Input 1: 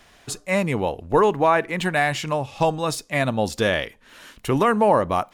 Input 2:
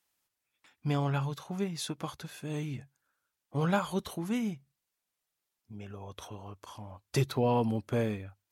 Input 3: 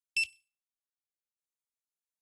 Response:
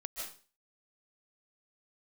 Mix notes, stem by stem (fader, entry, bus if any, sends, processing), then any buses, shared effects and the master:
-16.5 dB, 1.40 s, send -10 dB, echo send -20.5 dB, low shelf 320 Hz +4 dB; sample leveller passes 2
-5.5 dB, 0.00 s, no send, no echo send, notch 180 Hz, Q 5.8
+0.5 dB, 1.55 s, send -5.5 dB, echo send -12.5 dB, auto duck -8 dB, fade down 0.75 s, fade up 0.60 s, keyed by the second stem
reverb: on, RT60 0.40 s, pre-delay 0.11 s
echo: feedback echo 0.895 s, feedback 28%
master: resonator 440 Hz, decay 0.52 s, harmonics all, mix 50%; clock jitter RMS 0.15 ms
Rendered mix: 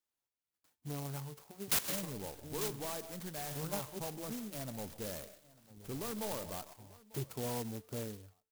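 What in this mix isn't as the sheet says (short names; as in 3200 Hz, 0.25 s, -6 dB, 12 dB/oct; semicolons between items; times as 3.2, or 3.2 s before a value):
stem 1 -16.5 dB -> -24.0 dB; stem 3 +0.5 dB -> +7.0 dB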